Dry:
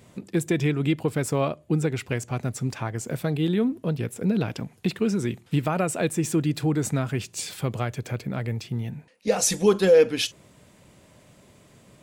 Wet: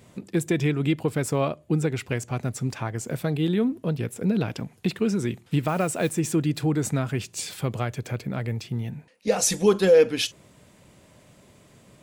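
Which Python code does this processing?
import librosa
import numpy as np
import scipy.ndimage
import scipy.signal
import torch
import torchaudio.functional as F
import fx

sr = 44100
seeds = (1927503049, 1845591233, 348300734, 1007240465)

y = fx.mod_noise(x, sr, seeds[0], snr_db=26, at=(5.67, 6.18), fade=0.02)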